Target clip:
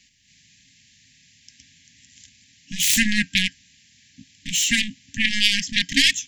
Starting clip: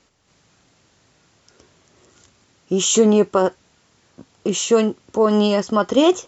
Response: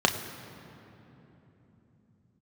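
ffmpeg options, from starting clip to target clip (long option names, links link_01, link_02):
-af "aeval=exprs='0.668*(cos(1*acos(clip(val(0)/0.668,-1,1)))-cos(1*PI/2))+0.237*(cos(7*acos(clip(val(0)/0.668,-1,1)))-cos(7*PI/2))':channel_layout=same,afftfilt=real='re*(1-between(b*sr/4096,290,1600))':imag='im*(1-between(b*sr/4096,290,1600))':win_size=4096:overlap=0.75,highshelf=frequency=1700:width_type=q:width=1.5:gain=7.5,volume=-5.5dB"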